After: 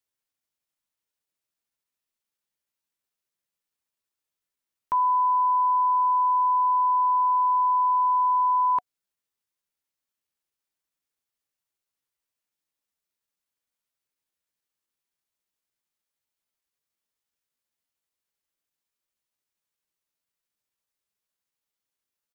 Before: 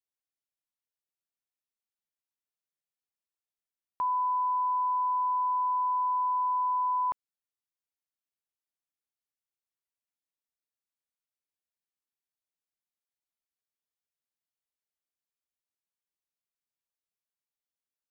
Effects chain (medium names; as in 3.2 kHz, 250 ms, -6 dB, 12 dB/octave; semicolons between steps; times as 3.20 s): band-stop 730 Hz, Q 15; tempo 0.81×; trim +6.5 dB